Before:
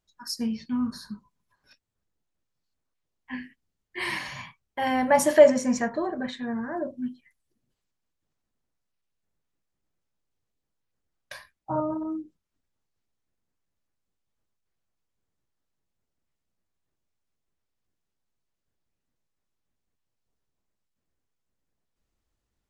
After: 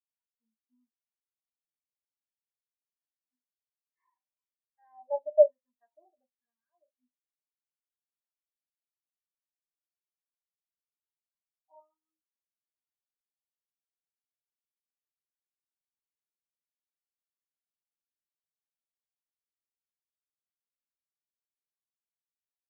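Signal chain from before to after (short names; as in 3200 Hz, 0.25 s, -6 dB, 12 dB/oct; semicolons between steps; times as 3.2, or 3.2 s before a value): wah 1.1 Hz 610–1400 Hz, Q 2.1; spectral expander 2.5:1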